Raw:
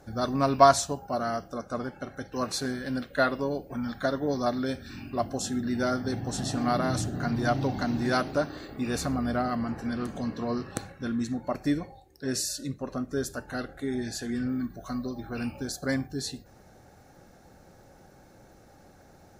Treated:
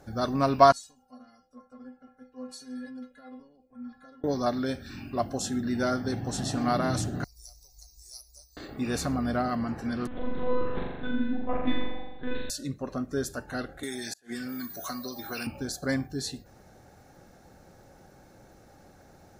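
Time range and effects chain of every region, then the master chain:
0:00.72–0:04.24: downward compressor 4 to 1, threshold −32 dBFS + stiff-string resonator 250 Hz, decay 0.25 s, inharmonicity 0.008 + multiband upward and downward expander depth 70%
0:07.24–0:08.57: inverse Chebyshev band-stop filter 110–3,400 Hz + tilt shelving filter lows −4.5 dB, about 630 Hz
0:10.07–0:12.50: one-pitch LPC vocoder at 8 kHz 250 Hz + flutter between parallel walls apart 7.2 metres, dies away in 1.1 s
0:13.83–0:15.47: RIAA equalisation recording + gate with flip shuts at −18 dBFS, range −32 dB + multiband upward and downward compressor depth 100%
whole clip: no processing

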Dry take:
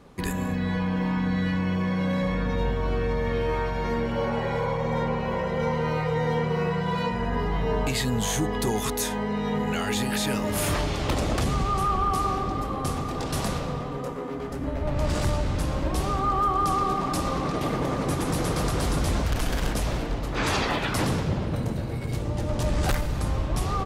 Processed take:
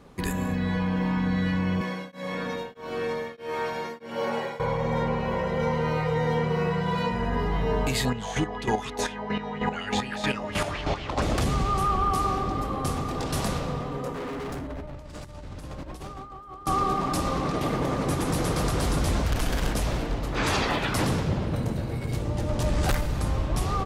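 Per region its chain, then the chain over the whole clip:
0:01.81–0:04.60: high-pass filter 250 Hz + high-shelf EQ 4,800 Hz +8 dB + tremolo along a rectified sine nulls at 1.6 Hz
0:08.05–0:11.22: low-pass filter 5,900 Hz + square-wave tremolo 3.2 Hz, depth 65%, duty 25% + auto-filter bell 4.2 Hz 640–3,000 Hz +12 dB
0:14.14–0:16.67: compressor whose output falls as the input rises −32 dBFS, ratio −0.5 + gain into a clipping stage and back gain 31.5 dB
whole clip: no processing

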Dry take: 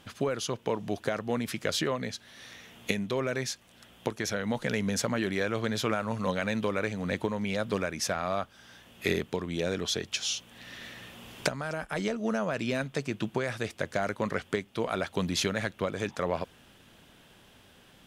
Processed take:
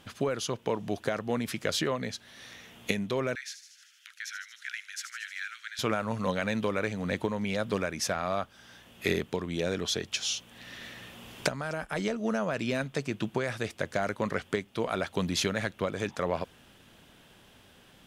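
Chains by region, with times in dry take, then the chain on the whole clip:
0:03.35–0:05.79: Butterworth high-pass 1,400 Hz 72 dB per octave + high-shelf EQ 3,000 Hz −8.5 dB + delay with a high-pass on its return 77 ms, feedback 70%, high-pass 4,700 Hz, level −8 dB
whole clip: no processing

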